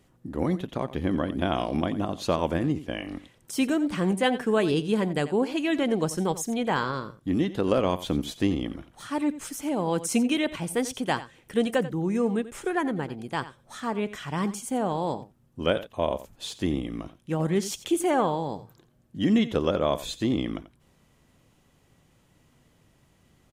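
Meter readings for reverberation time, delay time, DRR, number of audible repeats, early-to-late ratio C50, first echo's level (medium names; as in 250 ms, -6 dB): no reverb, 88 ms, no reverb, 1, no reverb, -15.0 dB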